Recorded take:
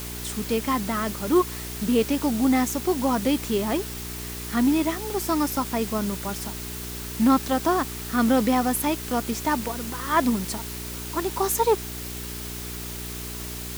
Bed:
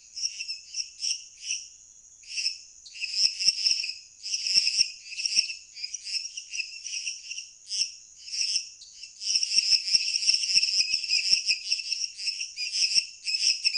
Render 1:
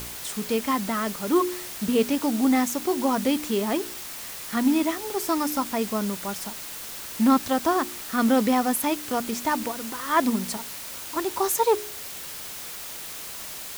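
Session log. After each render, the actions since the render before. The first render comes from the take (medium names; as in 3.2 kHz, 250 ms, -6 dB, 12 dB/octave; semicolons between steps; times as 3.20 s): de-hum 60 Hz, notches 7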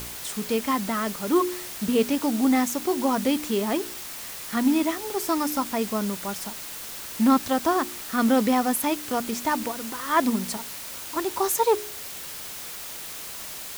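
no audible change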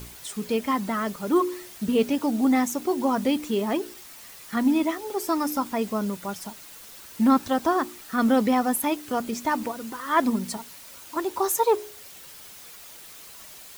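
noise reduction 9 dB, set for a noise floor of -37 dBFS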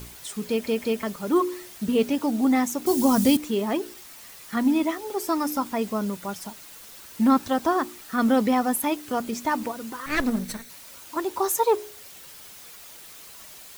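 0.49 s: stutter in place 0.18 s, 3 plays; 2.86–3.37 s: tone controls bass +12 dB, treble +14 dB; 10.06–10.70 s: comb filter that takes the minimum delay 0.5 ms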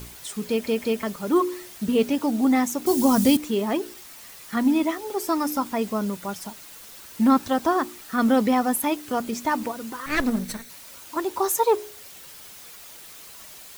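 trim +1 dB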